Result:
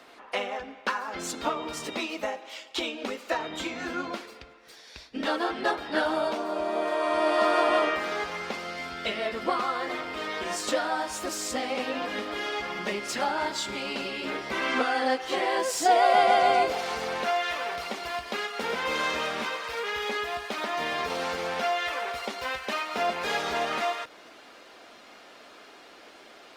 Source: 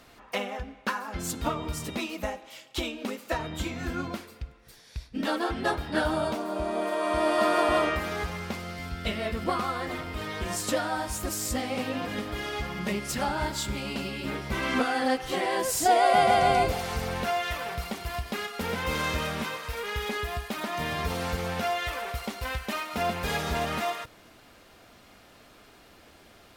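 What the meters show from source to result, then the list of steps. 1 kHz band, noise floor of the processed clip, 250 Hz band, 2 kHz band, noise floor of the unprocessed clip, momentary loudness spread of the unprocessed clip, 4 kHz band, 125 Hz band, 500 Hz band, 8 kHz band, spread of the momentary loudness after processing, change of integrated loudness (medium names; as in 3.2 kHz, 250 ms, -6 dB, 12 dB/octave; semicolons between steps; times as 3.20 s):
+1.5 dB, -51 dBFS, -3.0 dB, +2.0 dB, -55 dBFS, 11 LU, +2.0 dB, -14.5 dB, +1.0 dB, -2.0 dB, 11 LU, +1.0 dB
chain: three-band isolator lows -24 dB, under 260 Hz, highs -13 dB, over 7.2 kHz; in parallel at -1 dB: compression, threshold -39 dBFS, peak gain reduction 20 dB; on the sum: Opus 32 kbps 48 kHz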